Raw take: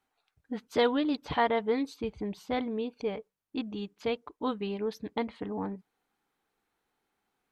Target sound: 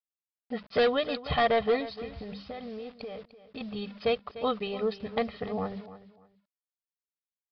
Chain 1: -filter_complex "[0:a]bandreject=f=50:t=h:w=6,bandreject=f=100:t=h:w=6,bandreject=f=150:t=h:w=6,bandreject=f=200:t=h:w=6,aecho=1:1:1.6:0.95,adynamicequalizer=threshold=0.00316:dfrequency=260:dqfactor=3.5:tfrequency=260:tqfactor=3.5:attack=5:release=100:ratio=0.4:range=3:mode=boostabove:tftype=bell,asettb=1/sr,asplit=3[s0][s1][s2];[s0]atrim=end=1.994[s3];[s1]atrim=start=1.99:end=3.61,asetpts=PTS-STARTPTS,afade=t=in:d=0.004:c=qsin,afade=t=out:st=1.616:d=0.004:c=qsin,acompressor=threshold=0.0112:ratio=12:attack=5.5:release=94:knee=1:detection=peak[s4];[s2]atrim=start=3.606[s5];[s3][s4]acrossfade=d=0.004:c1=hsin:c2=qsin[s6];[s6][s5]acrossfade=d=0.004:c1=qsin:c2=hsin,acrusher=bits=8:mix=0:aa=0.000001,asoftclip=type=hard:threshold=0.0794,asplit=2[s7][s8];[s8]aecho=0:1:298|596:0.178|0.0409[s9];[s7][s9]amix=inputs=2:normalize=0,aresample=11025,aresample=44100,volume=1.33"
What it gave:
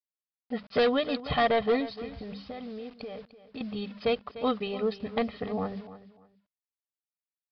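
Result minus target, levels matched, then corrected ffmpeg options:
250 Hz band +3.0 dB
-filter_complex "[0:a]bandreject=f=50:t=h:w=6,bandreject=f=100:t=h:w=6,bandreject=f=150:t=h:w=6,bandreject=f=200:t=h:w=6,aecho=1:1:1.6:0.95,adynamicequalizer=threshold=0.00316:dfrequency=73:dqfactor=3.5:tfrequency=73:tqfactor=3.5:attack=5:release=100:ratio=0.4:range=3:mode=boostabove:tftype=bell,asettb=1/sr,asplit=3[s0][s1][s2];[s0]atrim=end=1.994[s3];[s1]atrim=start=1.99:end=3.61,asetpts=PTS-STARTPTS,afade=t=in:d=0.004:c=qsin,afade=t=out:st=1.616:d=0.004:c=qsin,acompressor=threshold=0.0112:ratio=12:attack=5.5:release=94:knee=1:detection=peak[s4];[s2]atrim=start=3.606[s5];[s3][s4]acrossfade=d=0.004:c1=hsin:c2=qsin[s6];[s6][s5]acrossfade=d=0.004:c1=qsin:c2=hsin,acrusher=bits=8:mix=0:aa=0.000001,asoftclip=type=hard:threshold=0.0794,asplit=2[s7][s8];[s8]aecho=0:1:298|596:0.178|0.0409[s9];[s7][s9]amix=inputs=2:normalize=0,aresample=11025,aresample=44100,volume=1.33"

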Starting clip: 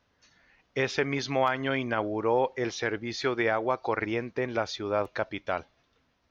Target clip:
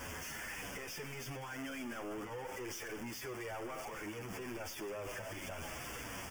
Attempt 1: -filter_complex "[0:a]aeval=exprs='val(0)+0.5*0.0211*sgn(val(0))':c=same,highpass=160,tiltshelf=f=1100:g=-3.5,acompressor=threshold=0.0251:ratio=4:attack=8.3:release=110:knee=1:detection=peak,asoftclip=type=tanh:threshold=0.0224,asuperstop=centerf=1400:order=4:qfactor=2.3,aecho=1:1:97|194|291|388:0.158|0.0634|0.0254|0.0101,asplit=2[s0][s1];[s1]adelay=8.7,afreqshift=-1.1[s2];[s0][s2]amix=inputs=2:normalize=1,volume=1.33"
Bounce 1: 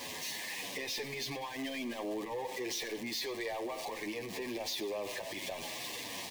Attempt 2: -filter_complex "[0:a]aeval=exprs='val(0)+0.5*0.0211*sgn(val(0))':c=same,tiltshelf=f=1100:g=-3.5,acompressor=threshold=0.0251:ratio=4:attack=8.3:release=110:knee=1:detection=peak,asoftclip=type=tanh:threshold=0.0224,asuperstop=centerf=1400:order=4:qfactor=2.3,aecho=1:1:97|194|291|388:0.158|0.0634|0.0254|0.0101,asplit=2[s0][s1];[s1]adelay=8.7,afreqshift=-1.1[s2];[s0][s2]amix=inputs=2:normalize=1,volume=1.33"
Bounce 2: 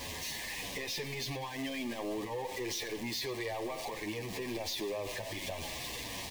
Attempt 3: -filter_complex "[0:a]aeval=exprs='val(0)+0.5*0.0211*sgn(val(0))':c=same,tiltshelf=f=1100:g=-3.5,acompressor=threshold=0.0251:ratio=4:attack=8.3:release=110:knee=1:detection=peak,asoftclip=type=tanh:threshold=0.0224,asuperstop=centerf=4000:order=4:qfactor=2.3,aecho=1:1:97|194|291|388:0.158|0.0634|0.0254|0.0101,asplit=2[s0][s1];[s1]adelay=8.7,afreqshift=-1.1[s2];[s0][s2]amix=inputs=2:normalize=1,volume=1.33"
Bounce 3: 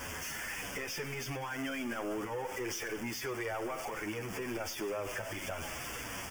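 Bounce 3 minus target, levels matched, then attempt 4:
saturation: distortion -5 dB
-filter_complex "[0:a]aeval=exprs='val(0)+0.5*0.0211*sgn(val(0))':c=same,tiltshelf=f=1100:g=-3.5,acompressor=threshold=0.0251:ratio=4:attack=8.3:release=110:knee=1:detection=peak,asoftclip=type=tanh:threshold=0.00794,asuperstop=centerf=4000:order=4:qfactor=2.3,aecho=1:1:97|194|291|388:0.158|0.0634|0.0254|0.0101,asplit=2[s0][s1];[s1]adelay=8.7,afreqshift=-1.1[s2];[s0][s2]amix=inputs=2:normalize=1,volume=1.33"

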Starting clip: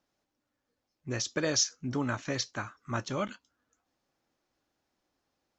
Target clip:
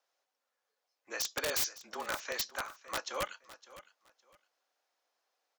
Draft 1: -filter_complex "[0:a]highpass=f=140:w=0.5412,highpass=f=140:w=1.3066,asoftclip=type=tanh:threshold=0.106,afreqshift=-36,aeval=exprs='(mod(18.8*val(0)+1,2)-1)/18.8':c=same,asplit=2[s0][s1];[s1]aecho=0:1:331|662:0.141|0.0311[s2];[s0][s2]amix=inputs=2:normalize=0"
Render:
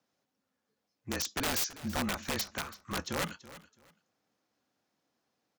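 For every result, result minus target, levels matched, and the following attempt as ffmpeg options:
125 Hz band +14.0 dB; echo 229 ms early
-filter_complex "[0:a]highpass=f=550:w=0.5412,highpass=f=550:w=1.3066,asoftclip=type=tanh:threshold=0.106,afreqshift=-36,aeval=exprs='(mod(18.8*val(0)+1,2)-1)/18.8':c=same,asplit=2[s0][s1];[s1]aecho=0:1:331|662:0.141|0.0311[s2];[s0][s2]amix=inputs=2:normalize=0"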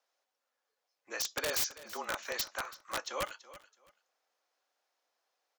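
echo 229 ms early
-filter_complex "[0:a]highpass=f=550:w=0.5412,highpass=f=550:w=1.3066,asoftclip=type=tanh:threshold=0.106,afreqshift=-36,aeval=exprs='(mod(18.8*val(0)+1,2)-1)/18.8':c=same,asplit=2[s0][s1];[s1]aecho=0:1:560|1120:0.141|0.0311[s2];[s0][s2]amix=inputs=2:normalize=0"

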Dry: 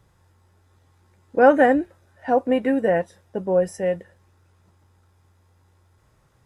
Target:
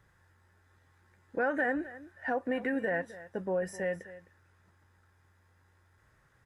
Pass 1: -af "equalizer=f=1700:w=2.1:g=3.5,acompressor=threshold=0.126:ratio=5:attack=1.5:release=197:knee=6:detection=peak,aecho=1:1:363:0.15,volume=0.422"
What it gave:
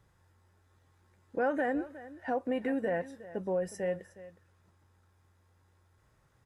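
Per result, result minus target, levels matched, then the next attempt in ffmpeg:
echo 104 ms late; 2 kHz band -5.5 dB
-af "equalizer=f=1700:w=2.1:g=3.5,acompressor=threshold=0.126:ratio=5:attack=1.5:release=197:knee=6:detection=peak,aecho=1:1:259:0.15,volume=0.422"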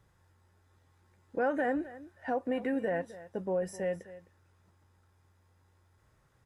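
2 kHz band -5.5 dB
-af "equalizer=f=1700:w=2.1:g=12.5,acompressor=threshold=0.126:ratio=5:attack=1.5:release=197:knee=6:detection=peak,aecho=1:1:259:0.15,volume=0.422"

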